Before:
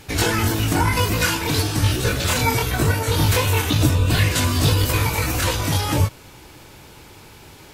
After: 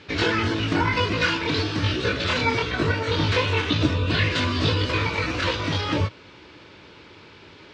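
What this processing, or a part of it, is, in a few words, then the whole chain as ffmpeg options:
guitar cabinet: -filter_complex "[0:a]asettb=1/sr,asplit=3[link_01][link_02][link_03];[link_01]atrim=end=2.324[link_04];[link_02]atrim=start=2.32:end=3.22,asetpts=PTS-STARTPTS,afade=type=in:duration=0.004:curve=qsin,afade=type=out:start_time=0.896:duration=0.004:curve=qsin,lowpass=frequency=11000:width=0.5412,lowpass=frequency=11000:width=1.3066[link_05];[link_03]atrim=start=3.216[link_06];[link_04][link_05]acrossfade=duration=0.004:curve1=hsin:curve2=qsin[link_07];[link_07][link_06]acrossfade=duration=0.004:curve1=qsin:curve2=hsin,highpass=110,equalizer=frequency=130:width_type=q:width=4:gain=-9,equalizer=frequency=220:width_type=q:width=4:gain=-3,equalizer=frequency=780:width_type=q:width=4:gain=-9,lowpass=frequency=4400:width=0.5412,lowpass=frequency=4400:width=1.3066"

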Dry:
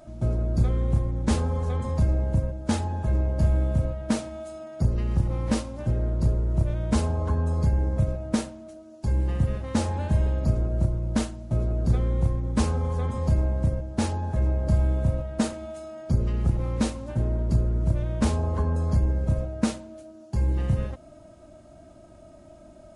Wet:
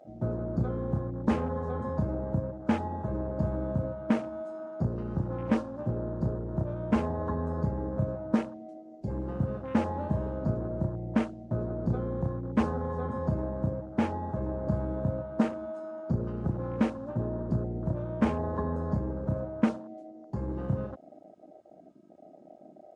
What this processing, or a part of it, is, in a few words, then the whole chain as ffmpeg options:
over-cleaned archive recording: -af "highpass=150,lowpass=6700,afwtdn=0.01"

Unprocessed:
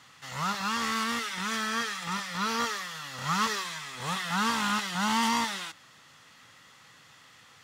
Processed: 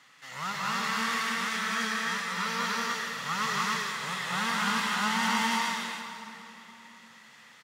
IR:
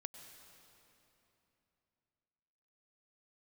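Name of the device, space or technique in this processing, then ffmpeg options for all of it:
stadium PA: -filter_complex "[0:a]highpass=180,equalizer=frequency=2000:width_type=o:width=0.69:gain=5,aecho=1:1:183.7|288.6:0.708|0.891[link_01];[1:a]atrim=start_sample=2205[link_02];[link_01][link_02]afir=irnorm=-1:irlink=0"

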